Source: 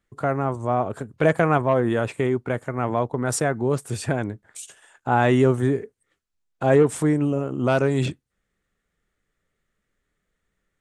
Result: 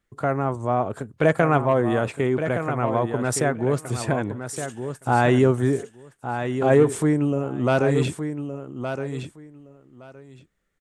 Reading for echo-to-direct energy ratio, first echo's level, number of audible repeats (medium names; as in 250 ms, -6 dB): -8.5 dB, -8.5 dB, 2